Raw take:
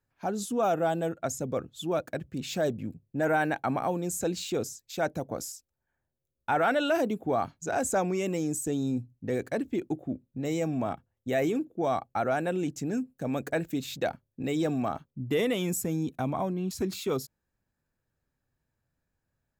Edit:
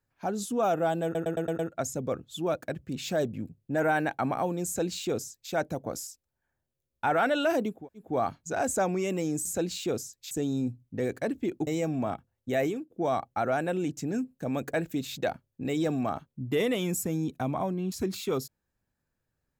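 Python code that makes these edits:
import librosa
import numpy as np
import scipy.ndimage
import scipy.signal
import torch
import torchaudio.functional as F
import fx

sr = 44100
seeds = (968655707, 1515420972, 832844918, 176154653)

y = fx.edit(x, sr, fx.stutter(start_s=1.04, slice_s=0.11, count=6),
    fx.duplicate(start_s=4.11, length_s=0.86, to_s=8.61),
    fx.insert_room_tone(at_s=7.22, length_s=0.29, crossfade_s=0.24),
    fx.cut(start_s=9.97, length_s=0.49),
    fx.fade_out_to(start_s=11.41, length_s=0.28, floor_db=-21.0), tone=tone)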